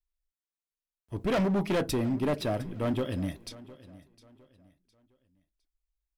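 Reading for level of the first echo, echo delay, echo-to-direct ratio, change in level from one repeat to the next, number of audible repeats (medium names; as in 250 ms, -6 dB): -19.5 dB, 709 ms, -19.0 dB, -10.0 dB, 2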